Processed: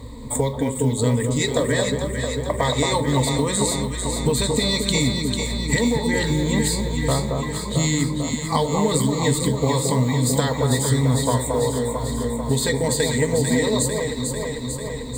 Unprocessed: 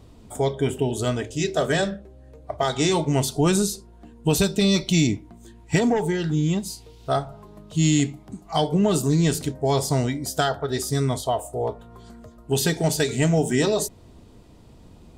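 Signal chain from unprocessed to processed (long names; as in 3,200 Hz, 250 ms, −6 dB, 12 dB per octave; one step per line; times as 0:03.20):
EQ curve with evenly spaced ripples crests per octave 1, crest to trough 17 dB
downward compressor 8 to 1, threshold −27 dBFS, peak gain reduction 16.5 dB
floating-point word with a short mantissa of 4 bits
on a send: delay that swaps between a low-pass and a high-pass 223 ms, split 1,300 Hz, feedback 83%, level −4 dB
on the sum: level +8.5 dB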